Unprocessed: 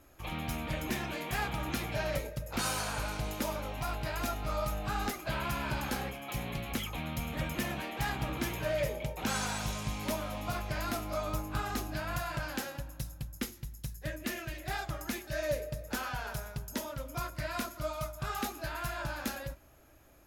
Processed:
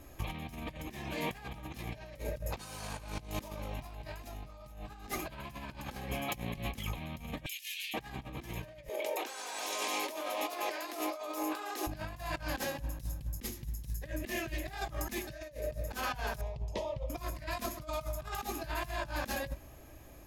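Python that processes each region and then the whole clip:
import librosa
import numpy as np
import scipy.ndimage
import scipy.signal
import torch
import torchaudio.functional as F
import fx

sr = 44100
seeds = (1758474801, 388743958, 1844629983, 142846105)

y = fx.chain(x, sr, fx.steep_highpass(hz=2500.0, slope=36),
    fx.over_compress(threshold_db=-47.0, ratio=-0.5), at=(7.46, 7.94))
y = fx.chain(y, sr, fx.steep_highpass(hz=310.0, slope=48),
    fx.over_compress(threshold_db=-44.0, ratio=-1.0), at=(8.89, 11.87))
y = fx.chain(y, sr, fx.lowpass(hz=2800.0, slope=12),
    fx.fixed_phaser(hz=610.0, stages=4), at=(16.41, 17.1))
y = fx.low_shelf(y, sr, hz=250.0, db=4.0)
y = fx.notch(y, sr, hz=1400.0, q=5.7)
y = fx.over_compress(y, sr, threshold_db=-39.0, ratio=-0.5)
y = y * 10.0 ** (1.0 / 20.0)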